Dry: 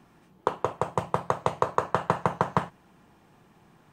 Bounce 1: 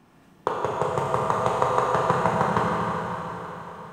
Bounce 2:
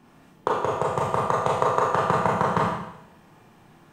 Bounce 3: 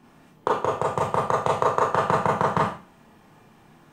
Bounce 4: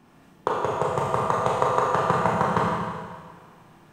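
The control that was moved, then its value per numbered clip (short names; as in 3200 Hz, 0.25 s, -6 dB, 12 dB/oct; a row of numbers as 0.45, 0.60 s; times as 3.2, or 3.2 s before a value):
Schroeder reverb, RT60: 4.2, 0.8, 0.35, 1.7 s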